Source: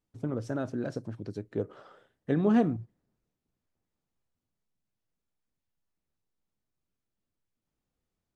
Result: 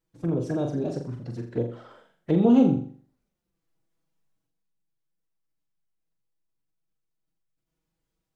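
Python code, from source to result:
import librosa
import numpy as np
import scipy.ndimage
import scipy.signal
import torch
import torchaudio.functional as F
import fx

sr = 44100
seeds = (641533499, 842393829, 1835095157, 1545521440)

y = fx.env_flanger(x, sr, rest_ms=7.0, full_db=-29.0)
y = fx.pitch_keep_formants(y, sr, semitones=2.0)
y = fx.room_flutter(y, sr, wall_m=7.2, rt60_s=0.46)
y = F.gain(torch.from_numpy(y), 5.5).numpy()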